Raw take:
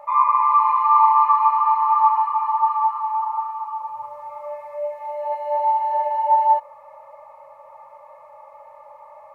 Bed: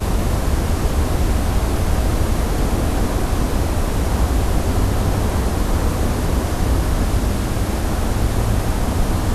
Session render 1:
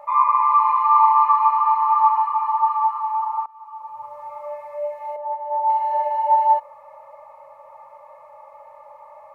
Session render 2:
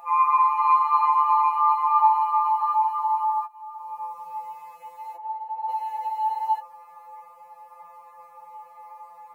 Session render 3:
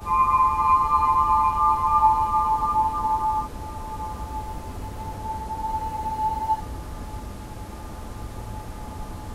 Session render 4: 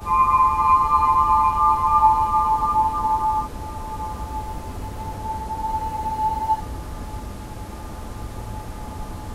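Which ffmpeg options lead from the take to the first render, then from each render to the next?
ffmpeg -i in.wav -filter_complex "[0:a]asettb=1/sr,asplit=3[link_01][link_02][link_03];[link_01]atrim=end=5.164[link_04];[link_02]atrim=start=5.16:end=5.7,asetpts=PTS-STARTPTS,afade=type=in:duration=0.004:curve=qsin,afade=type=out:start_time=0.536:duration=0.004:curve=qsin,bandpass=frequency=880:width_type=q:width=1.9[link_05];[link_03]atrim=start=5.696[link_06];[link_04][link_05]acrossfade=duration=0.004:curve1=hsin:curve2=qsin[link_07];[link_07][link_06]acrossfade=duration=0.004:curve1=qsin:curve2=hsin,asplit=2[link_08][link_09];[link_08]atrim=end=3.46,asetpts=PTS-STARTPTS,afade=type=out:start_time=3.456:duration=0.004:curve=hsin:silence=0.0707946[link_10];[link_09]atrim=start=3.46,asetpts=PTS-STARTPTS,afade=type=in:duration=0.78:silence=0.0707946[link_11];[link_10][link_11]concat=n=2:v=0:a=1" out.wav
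ffmpeg -i in.wav -af "crystalizer=i=2:c=0,afftfilt=real='re*2.83*eq(mod(b,8),0)':imag='im*2.83*eq(mod(b,8),0)':win_size=2048:overlap=0.75" out.wav
ffmpeg -i in.wav -i bed.wav -filter_complex "[1:a]volume=-17dB[link_01];[0:a][link_01]amix=inputs=2:normalize=0" out.wav
ffmpeg -i in.wav -af "volume=2.5dB" out.wav

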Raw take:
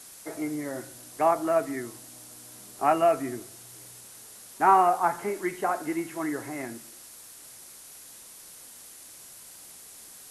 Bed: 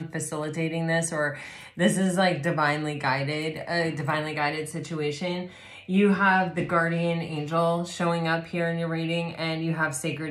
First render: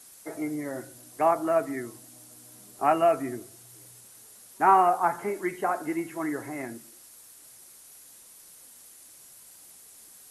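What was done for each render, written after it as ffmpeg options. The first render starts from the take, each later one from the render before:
ffmpeg -i in.wav -af "afftdn=noise_reduction=6:noise_floor=-48" out.wav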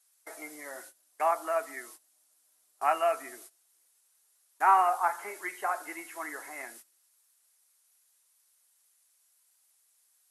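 ffmpeg -i in.wav -af "agate=range=-18dB:threshold=-43dB:ratio=16:detection=peak,highpass=880" out.wav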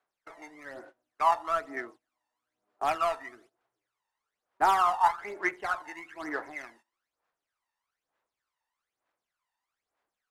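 ffmpeg -i in.wav -af "adynamicsmooth=sensitivity=8:basefreq=1600,aphaser=in_gain=1:out_gain=1:delay=1.1:decay=0.71:speed=1.1:type=sinusoidal" out.wav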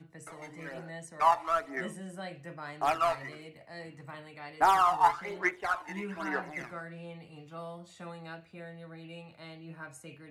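ffmpeg -i in.wav -i bed.wav -filter_complex "[1:a]volume=-19dB[link_01];[0:a][link_01]amix=inputs=2:normalize=0" out.wav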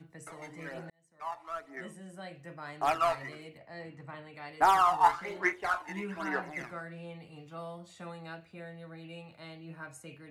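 ffmpeg -i in.wav -filter_complex "[0:a]asettb=1/sr,asplit=3[link_01][link_02][link_03];[link_01]atrim=end=3.584[link_04];[link_02]atrim=start=3.58:end=4.34,asetpts=PTS-STARTPTS,afade=type=in:duration=0.004:curve=qsin,afade=type=out:start_time=0.756:duration=0.004:curve=qsin,aemphasis=mode=reproduction:type=50fm[link_05];[link_03]atrim=start=4.336[link_06];[link_04][link_05]acrossfade=duration=0.004:curve1=hsin:curve2=qsin[link_07];[link_07][link_06]acrossfade=duration=0.004:curve1=qsin:curve2=hsin,asettb=1/sr,asplit=3[link_08][link_09][link_10];[link_08]atrim=end=4.994[link_11];[link_09]atrim=start=4.99:end=5.78,asetpts=PTS-STARTPTS,afade=type=in:duration=0.004:curve=qsin,afade=type=out:start_time=0.786:duration=0.004:curve=qsin,asplit=2[link_12][link_13];[link_13]adelay=31,volume=-10dB[link_14];[link_12][link_14]amix=inputs=2:normalize=0,atrim=end_sample=34839[link_15];[link_10]atrim=start=5.776[link_16];[link_11][link_15]acrossfade=duration=0.004:curve1=hsin:curve2=qsin[link_17];[link_17][link_16]acrossfade=duration=0.004:curve1=qsin:curve2=hsin,asplit=2[link_18][link_19];[link_18]atrim=end=0.9,asetpts=PTS-STARTPTS,afade=type=out:start_time=0.896:duration=0.004:curve=hsin[link_20];[link_19]atrim=start=0.9,asetpts=PTS-STARTPTS,afade=type=in:duration=2.04[link_21];[link_20][link_21]concat=n=2:v=0:a=1" out.wav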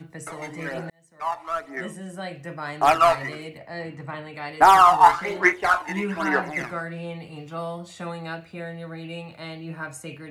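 ffmpeg -i in.wav -af "volume=11dB,alimiter=limit=-3dB:level=0:latency=1" out.wav

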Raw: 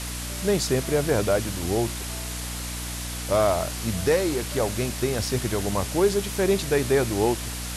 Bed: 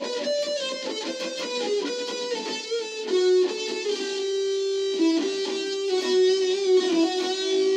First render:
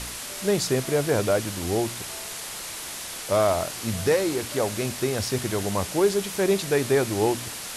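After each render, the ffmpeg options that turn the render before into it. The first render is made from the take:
ffmpeg -i in.wav -af "bandreject=frequency=60:width_type=h:width=4,bandreject=frequency=120:width_type=h:width=4,bandreject=frequency=180:width_type=h:width=4,bandreject=frequency=240:width_type=h:width=4,bandreject=frequency=300:width_type=h:width=4" out.wav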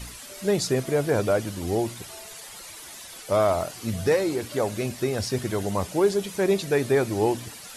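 ffmpeg -i in.wav -af "afftdn=noise_reduction=11:noise_floor=-36" out.wav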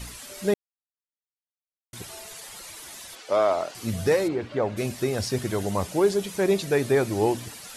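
ffmpeg -i in.wav -filter_complex "[0:a]asettb=1/sr,asplit=3[link_01][link_02][link_03];[link_01]atrim=end=3.154[link_04];[link_02]atrim=start=3.15:end=3.75,asetpts=PTS-STARTPTS,afade=type=in:duration=0.004:curve=qsin,afade=type=out:start_time=0.596:duration=0.004:curve=qsin,acrossover=split=250 6600:gain=0.112 1 0.141[link_05][link_06][link_07];[link_05][link_06][link_07]amix=inputs=3:normalize=0[link_08];[link_03]atrim=start=3.746[link_09];[link_04][link_08]acrossfade=duration=0.004:curve1=hsin:curve2=qsin[link_10];[link_10][link_09]acrossfade=duration=0.004:curve1=qsin:curve2=hsin,asplit=3[link_11][link_12][link_13];[link_11]afade=type=out:start_time=4.27:duration=0.02[link_14];[link_12]lowpass=2600,afade=type=in:start_time=4.27:duration=0.02,afade=type=out:start_time=4.76:duration=0.02[link_15];[link_13]afade=type=in:start_time=4.76:duration=0.02[link_16];[link_14][link_15][link_16]amix=inputs=3:normalize=0,asplit=3[link_17][link_18][link_19];[link_17]atrim=end=0.54,asetpts=PTS-STARTPTS,afade=type=out:start_time=0.536:duration=0.004:curve=hsin[link_20];[link_18]atrim=start=0.54:end=1.93,asetpts=PTS-STARTPTS,volume=0[link_21];[link_19]atrim=start=1.93,asetpts=PTS-STARTPTS,afade=type=in:duration=0.004:curve=hsin[link_22];[link_20][link_21][link_22]concat=n=3:v=0:a=1" out.wav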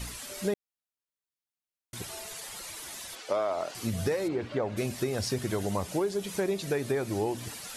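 ffmpeg -i in.wav -af "acompressor=threshold=-26dB:ratio=6" out.wav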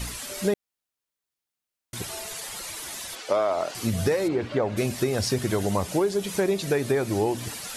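ffmpeg -i in.wav -af "volume=5.5dB" out.wav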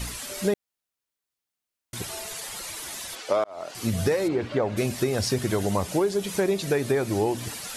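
ffmpeg -i in.wav -filter_complex "[0:a]asplit=2[link_01][link_02];[link_01]atrim=end=3.44,asetpts=PTS-STARTPTS,afade=type=out:start_time=3.436:duration=0.004:curve=hsin[link_03];[link_02]atrim=start=3.44,asetpts=PTS-STARTPTS,afade=type=in:duration=0.45[link_04];[link_03][link_04]concat=n=2:v=0:a=1" out.wav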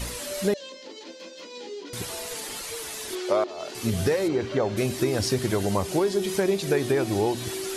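ffmpeg -i in.wav -i bed.wav -filter_complex "[1:a]volume=-12dB[link_01];[0:a][link_01]amix=inputs=2:normalize=0" out.wav

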